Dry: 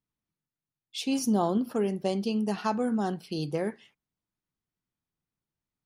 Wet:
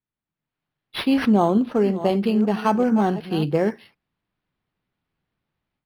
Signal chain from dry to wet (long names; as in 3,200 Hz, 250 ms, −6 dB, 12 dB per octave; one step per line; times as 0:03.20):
0:01.37–0:03.44: delay that plays each chunk backwards 367 ms, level −12.5 dB
automatic gain control gain up to 14 dB
linearly interpolated sample-rate reduction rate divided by 6×
level −3.5 dB